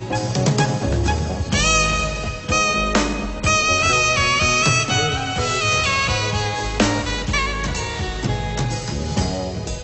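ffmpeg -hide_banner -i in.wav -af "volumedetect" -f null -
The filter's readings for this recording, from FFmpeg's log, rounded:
mean_volume: -19.9 dB
max_volume: -3.1 dB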